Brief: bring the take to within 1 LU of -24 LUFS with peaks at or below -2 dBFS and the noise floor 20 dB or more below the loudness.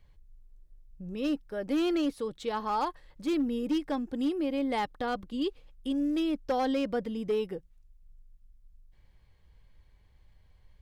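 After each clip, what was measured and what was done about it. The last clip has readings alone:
clipped 0.8%; flat tops at -23.0 dBFS; loudness -31.5 LUFS; peak -23.0 dBFS; loudness target -24.0 LUFS
-> clip repair -23 dBFS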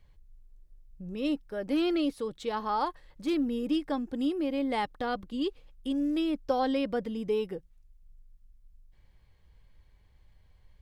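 clipped 0.0%; loudness -31.0 LUFS; peak -16.0 dBFS; loudness target -24.0 LUFS
-> gain +7 dB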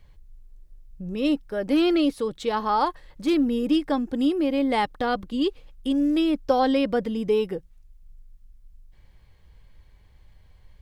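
loudness -24.0 LUFS; peak -9.0 dBFS; noise floor -55 dBFS

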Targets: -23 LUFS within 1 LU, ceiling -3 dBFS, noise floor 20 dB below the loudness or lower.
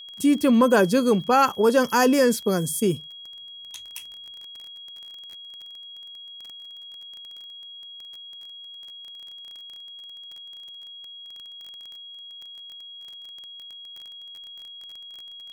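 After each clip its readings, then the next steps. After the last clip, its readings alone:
ticks 19/s; steady tone 3300 Hz; tone level -39 dBFS; loudness -20.5 LUFS; peak -7.0 dBFS; loudness target -23.0 LUFS
-> de-click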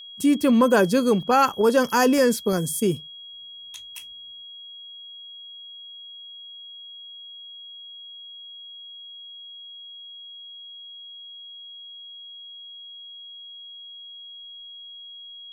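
ticks 0.45/s; steady tone 3300 Hz; tone level -39 dBFS
-> notch 3300 Hz, Q 30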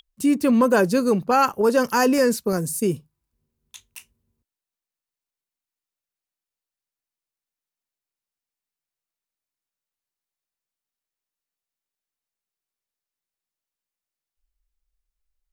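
steady tone none; loudness -20.0 LUFS; peak -7.0 dBFS; loudness target -23.0 LUFS
-> gain -3 dB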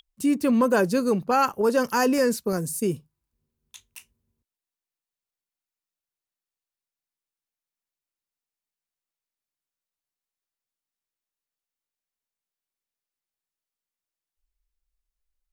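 loudness -23.0 LUFS; peak -10.0 dBFS; noise floor -92 dBFS

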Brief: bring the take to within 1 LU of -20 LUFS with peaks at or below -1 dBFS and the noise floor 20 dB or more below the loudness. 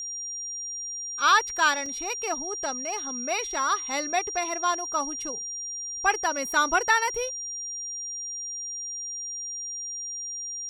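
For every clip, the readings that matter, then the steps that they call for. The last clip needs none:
dropouts 1; longest dropout 2.9 ms; steady tone 5700 Hz; tone level -32 dBFS; loudness -27.0 LUFS; peak -9.0 dBFS; loudness target -20.0 LUFS
-> interpolate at 1.86, 2.9 ms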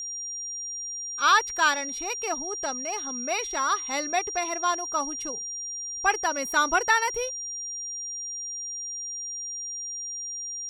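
dropouts 0; steady tone 5700 Hz; tone level -32 dBFS
-> notch 5700 Hz, Q 30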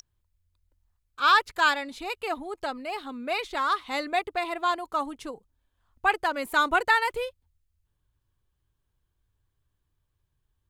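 steady tone none; loudness -26.5 LUFS; peak -9.5 dBFS; loudness target -20.0 LUFS
-> gain +6.5 dB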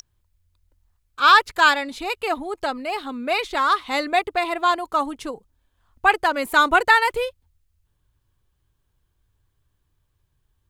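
loudness -20.0 LUFS; peak -3.0 dBFS; noise floor -71 dBFS

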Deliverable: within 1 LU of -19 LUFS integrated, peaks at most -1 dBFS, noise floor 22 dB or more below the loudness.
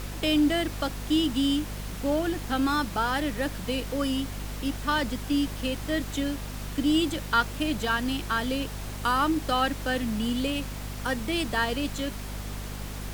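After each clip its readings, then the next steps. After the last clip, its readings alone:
hum 50 Hz; harmonics up to 250 Hz; hum level -34 dBFS; noise floor -36 dBFS; noise floor target -50 dBFS; loudness -28.0 LUFS; peak -11.0 dBFS; loudness target -19.0 LUFS
-> notches 50/100/150/200/250 Hz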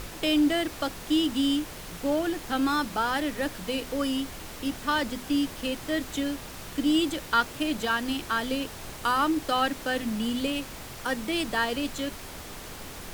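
hum none; noise floor -41 dBFS; noise floor target -50 dBFS
-> noise print and reduce 9 dB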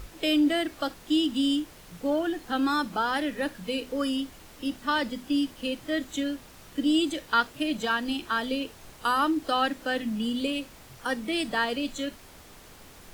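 noise floor -50 dBFS; loudness -28.0 LUFS; peak -11.5 dBFS; loudness target -19.0 LUFS
-> gain +9 dB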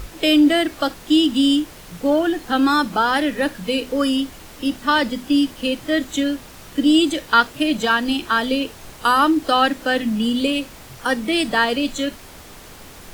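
loudness -19.0 LUFS; peak -2.5 dBFS; noise floor -41 dBFS

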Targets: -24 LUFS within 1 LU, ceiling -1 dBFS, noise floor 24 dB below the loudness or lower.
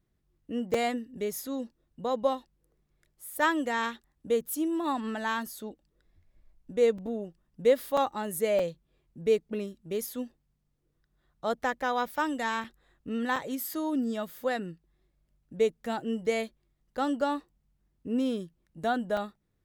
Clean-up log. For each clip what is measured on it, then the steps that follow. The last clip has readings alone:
dropouts 7; longest dropout 4.3 ms; loudness -31.0 LUFS; peak -13.0 dBFS; loudness target -24.0 LUFS
-> interpolate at 0.74/6.98/7.97/8.59/12.64/13.36/19.17, 4.3 ms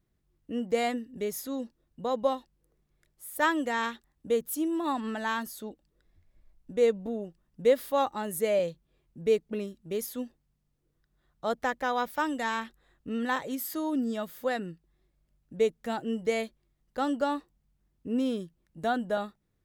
dropouts 0; loudness -31.0 LUFS; peak -13.0 dBFS; loudness target -24.0 LUFS
-> gain +7 dB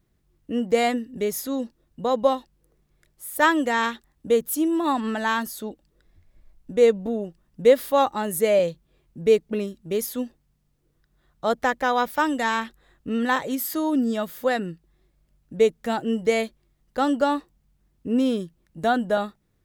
loudness -24.0 LUFS; peak -6.0 dBFS; noise floor -68 dBFS

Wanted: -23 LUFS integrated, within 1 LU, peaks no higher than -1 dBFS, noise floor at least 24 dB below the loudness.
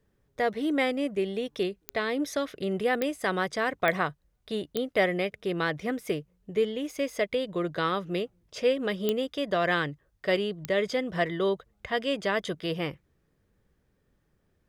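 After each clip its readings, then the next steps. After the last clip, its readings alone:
clicks 6; loudness -29.5 LUFS; peak -11.5 dBFS; loudness target -23.0 LUFS
-> de-click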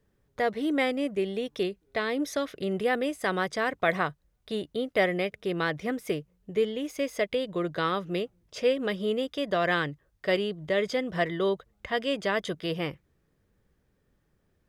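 clicks 0; loudness -29.5 LUFS; peak -11.5 dBFS; loudness target -23.0 LUFS
-> gain +6.5 dB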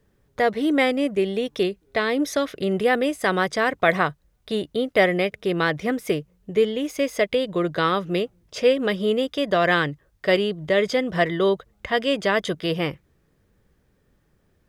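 loudness -23.0 LUFS; peak -5.0 dBFS; noise floor -66 dBFS

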